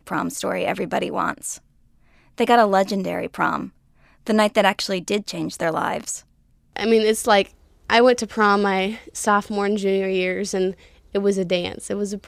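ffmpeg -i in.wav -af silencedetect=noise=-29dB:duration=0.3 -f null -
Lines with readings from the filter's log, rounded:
silence_start: 1.56
silence_end: 2.38 | silence_duration: 0.83
silence_start: 3.66
silence_end: 4.27 | silence_duration: 0.61
silence_start: 6.18
silence_end: 6.76 | silence_duration: 0.59
silence_start: 7.47
silence_end: 7.90 | silence_duration: 0.43
silence_start: 10.71
silence_end: 11.15 | silence_duration: 0.43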